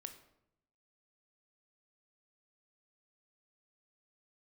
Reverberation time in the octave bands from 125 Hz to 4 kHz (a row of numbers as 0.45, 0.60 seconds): 1.1, 0.95, 0.85, 0.75, 0.60, 0.50 seconds